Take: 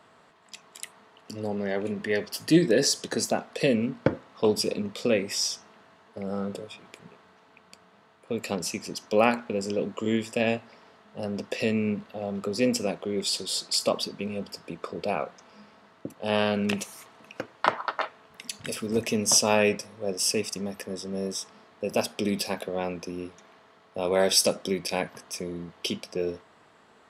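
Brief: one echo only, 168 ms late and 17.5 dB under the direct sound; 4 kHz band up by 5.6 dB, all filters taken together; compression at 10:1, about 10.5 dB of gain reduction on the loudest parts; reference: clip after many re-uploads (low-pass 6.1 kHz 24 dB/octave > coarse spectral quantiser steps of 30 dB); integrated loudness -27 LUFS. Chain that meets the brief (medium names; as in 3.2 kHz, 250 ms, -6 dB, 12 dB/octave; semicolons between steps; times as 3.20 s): peaking EQ 4 kHz +8.5 dB; compression 10:1, threshold -23 dBFS; low-pass 6.1 kHz 24 dB/octave; delay 168 ms -17.5 dB; coarse spectral quantiser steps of 30 dB; trim +4 dB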